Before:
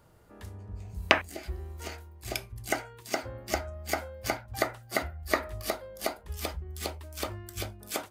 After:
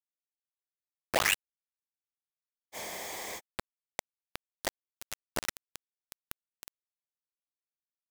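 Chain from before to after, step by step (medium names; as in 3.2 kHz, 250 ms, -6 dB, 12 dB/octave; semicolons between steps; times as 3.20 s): delay that grows with frequency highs late, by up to 618 ms; peaking EQ 14 kHz +2.5 dB 1.2 oct; bit crusher 4-bit; spectral freeze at 2.77 s, 0.60 s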